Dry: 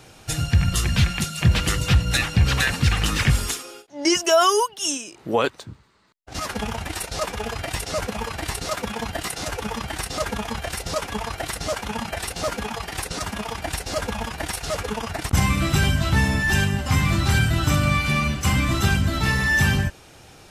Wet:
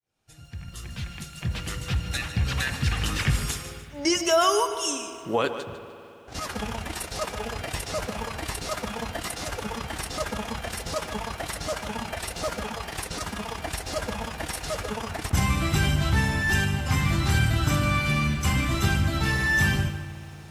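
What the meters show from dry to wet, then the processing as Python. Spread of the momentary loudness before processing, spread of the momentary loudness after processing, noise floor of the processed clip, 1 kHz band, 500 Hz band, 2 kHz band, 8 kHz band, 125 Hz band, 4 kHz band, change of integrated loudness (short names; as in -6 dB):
10 LU, 11 LU, -44 dBFS, -3.5 dB, -3.5 dB, -3.5 dB, -4.5 dB, -4.5 dB, -4.5 dB, -4.0 dB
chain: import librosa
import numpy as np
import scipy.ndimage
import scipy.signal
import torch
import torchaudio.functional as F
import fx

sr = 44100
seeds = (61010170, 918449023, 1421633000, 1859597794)

y = fx.fade_in_head(x, sr, length_s=3.78)
y = fx.rev_spring(y, sr, rt60_s=3.2, pass_ms=(54,), chirp_ms=65, drr_db=11.5)
y = fx.echo_crushed(y, sr, ms=150, feedback_pct=35, bits=8, wet_db=-12.5)
y = y * librosa.db_to_amplitude(-4.0)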